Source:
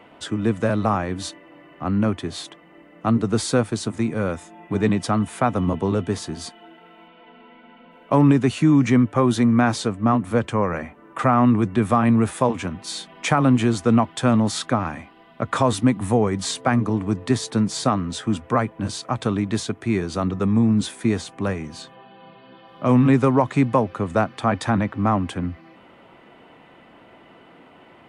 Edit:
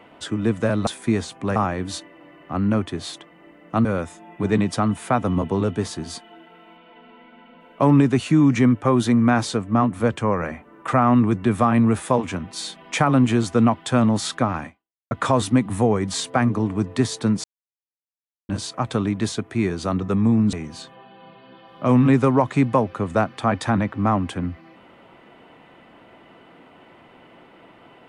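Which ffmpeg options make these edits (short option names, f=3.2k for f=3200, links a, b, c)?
-filter_complex "[0:a]asplit=8[a][b][c][d][e][f][g][h];[a]atrim=end=0.872[i];[b]atrim=start=20.838:end=21.532[j];[c]atrim=start=0.868:end=3.162[k];[d]atrim=start=4.158:end=15.42,asetpts=PTS-STARTPTS,afade=t=out:st=10.812:d=0.45:c=exp[l];[e]atrim=start=15.42:end=17.75,asetpts=PTS-STARTPTS,afade=t=in:d=0.004:c=hsin,afade=t=out:st=2.326:d=0.004:c=hsin[m];[f]atrim=start=17.75:end=18.8,asetpts=PTS-STARTPTS,volume=0[n];[g]atrim=start=18.8:end=20.842,asetpts=PTS-STARTPTS,afade=t=in:d=0.004:c=hsin[o];[h]atrim=start=21.528[p];[i][j]acrossfade=d=0.004:c1=hsin:c2=hsin[q];[q][k]acrossfade=d=0.004:c1=hsin:c2=hsin[r];[l][m][n][o]concat=n=4:v=0:a=1[s];[r][s]acrossfade=d=0.004:c1=hsin:c2=hsin[t];[t][p]acrossfade=d=0.004:c1=hsin:c2=hsin"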